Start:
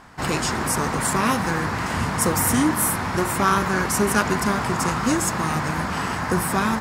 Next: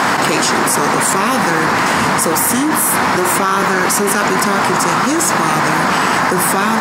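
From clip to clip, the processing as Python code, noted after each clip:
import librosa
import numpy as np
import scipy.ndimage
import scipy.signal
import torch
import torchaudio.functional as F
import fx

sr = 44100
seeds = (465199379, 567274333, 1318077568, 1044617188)

y = scipy.signal.sosfilt(scipy.signal.butter(2, 240.0, 'highpass', fs=sr, output='sos'), x)
y = fx.env_flatten(y, sr, amount_pct=100)
y = y * 10.0 ** (2.5 / 20.0)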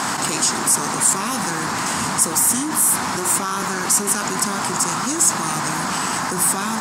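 y = fx.graphic_eq(x, sr, hz=(500, 2000, 8000), db=(-7, -5, 10))
y = y * 10.0 ** (-7.0 / 20.0)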